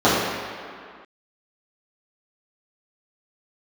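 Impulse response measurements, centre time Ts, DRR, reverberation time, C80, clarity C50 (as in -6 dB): 115 ms, -12.5 dB, 2.1 s, 1.0 dB, -1.0 dB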